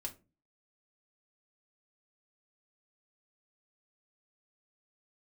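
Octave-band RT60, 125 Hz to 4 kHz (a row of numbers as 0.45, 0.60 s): 0.50, 0.50, 0.35, 0.25, 0.20, 0.20 s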